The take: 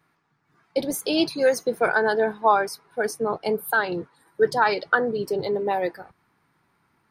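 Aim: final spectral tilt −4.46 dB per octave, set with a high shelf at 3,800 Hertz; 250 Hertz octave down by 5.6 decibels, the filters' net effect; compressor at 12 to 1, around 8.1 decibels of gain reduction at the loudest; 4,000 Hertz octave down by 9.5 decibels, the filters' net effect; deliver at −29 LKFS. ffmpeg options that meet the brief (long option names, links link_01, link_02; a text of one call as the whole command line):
ffmpeg -i in.wav -af "equalizer=frequency=250:width_type=o:gain=-8,highshelf=frequency=3800:gain=-8.5,equalizer=frequency=4000:width_type=o:gain=-7,acompressor=threshold=-23dB:ratio=12,volume=1dB" out.wav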